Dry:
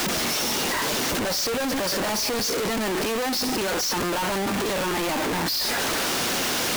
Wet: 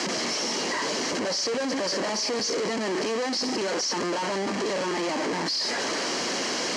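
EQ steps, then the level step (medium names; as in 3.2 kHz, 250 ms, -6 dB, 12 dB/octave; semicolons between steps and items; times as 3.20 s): cabinet simulation 230–6600 Hz, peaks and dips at 790 Hz -4 dB, 1.4 kHz -7 dB, 2.6 kHz -6 dB; band-stop 3.6 kHz, Q 5.8; 0.0 dB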